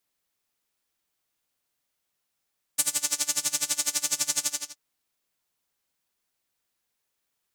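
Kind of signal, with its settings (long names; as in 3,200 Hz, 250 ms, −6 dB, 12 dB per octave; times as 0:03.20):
subtractive patch with tremolo D4, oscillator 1 saw, oscillator 2 triangle, interval −12 semitones, oscillator 2 level −3 dB, noise −7 dB, filter bandpass, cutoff 6,100 Hz, Q 2.2, filter envelope 0.5 octaves, attack 9.6 ms, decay 0.10 s, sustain −3.5 dB, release 0.32 s, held 1.66 s, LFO 12 Hz, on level 23 dB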